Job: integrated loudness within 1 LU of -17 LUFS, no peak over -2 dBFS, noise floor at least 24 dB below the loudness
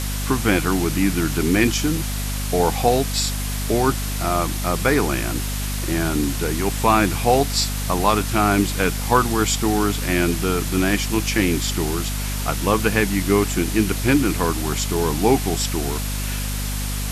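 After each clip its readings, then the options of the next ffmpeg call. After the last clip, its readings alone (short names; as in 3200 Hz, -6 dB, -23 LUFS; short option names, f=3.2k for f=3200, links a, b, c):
hum 50 Hz; harmonics up to 250 Hz; hum level -23 dBFS; noise floor -25 dBFS; noise floor target -45 dBFS; loudness -20.5 LUFS; peak -2.5 dBFS; loudness target -17.0 LUFS
-> -af "bandreject=f=50:t=h:w=6,bandreject=f=100:t=h:w=6,bandreject=f=150:t=h:w=6,bandreject=f=200:t=h:w=6,bandreject=f=250:t=h:w=6"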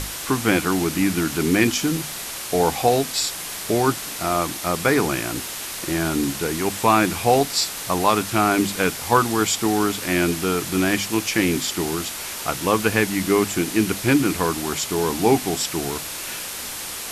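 hum none; noise floor -32 dBFS; noise floor target -46 dBFS
-> -af "afftdn=nr=14:nf=-32"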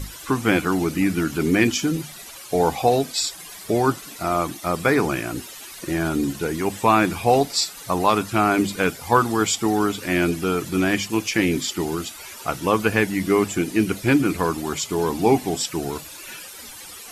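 noise floor -40 dBFS; noise floor target -46 dBFS
-> -af "afftdn=nr=6:nf=-40"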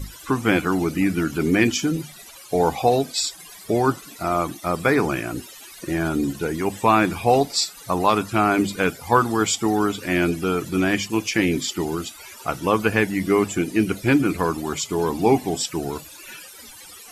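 noise floor -43 dBFS; noise floor target -46 dBFS
-> -af "afftdn=nr=6:nf=-43"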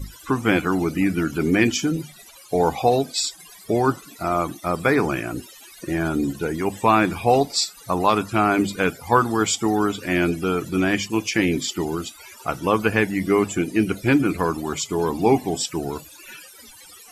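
noise floor -46 dBFS; loudness -22.0 LUFS; peak -3.5 dBFS; loudness target -17.0 LUFS
-> -af "volume=5dB,alimiter=limit=-2dB:level=0:latency=1"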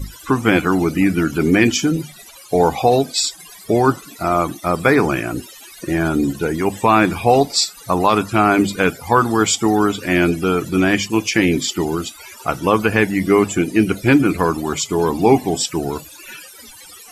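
loudness -17.0 LUFS; peak -2.0 dBFS; noise floor -41 dBFS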